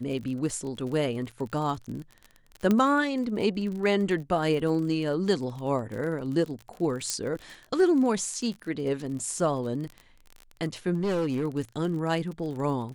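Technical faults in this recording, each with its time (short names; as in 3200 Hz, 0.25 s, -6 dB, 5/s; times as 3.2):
crackle 34/s -34 dBFS
2.71 pop -12 dBFS
7.1 pop -13 dBFS
10.94–11.45 clipped -23.5 dBFS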